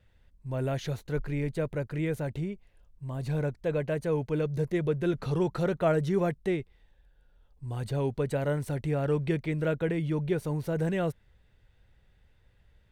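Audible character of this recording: noise floor -64 dBFS; spectral tilt -6.5 dB/octave

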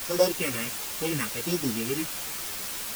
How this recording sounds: a buzz of ramps at a fixed pitch in blocks of 16 samples; phasing stages 4, 1.4 Hz, lowest notch 690–2600 Hz; a quantiser's noise floor 6-bit, dither triangular; a shimmering, thickened sound

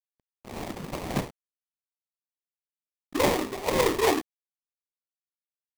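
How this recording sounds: a quantiser's noise floor 8-bit, dither none; phasing stages 2, 1.5 Hz, lowest notch 740–2200 Hz; aliases and images of a low sample rate 1.5 kHz, jitter 20%

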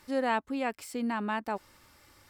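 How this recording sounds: noise floor -62 dBFS; spectral tilt -3.0 dB/octave

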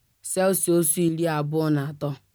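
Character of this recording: tremolo saw up 0.92 Hz, depth 50%; a quantiser's noise floor 12-bit, dither triangular

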